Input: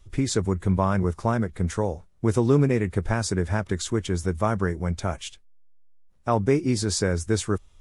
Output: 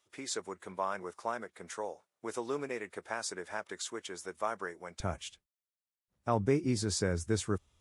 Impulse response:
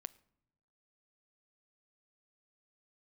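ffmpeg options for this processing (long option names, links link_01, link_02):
-af "asetnsamples=nb_out_samples=441:pad=0,asendcmd='5 highpass f 66',highpass=560,volume=-7.5dB"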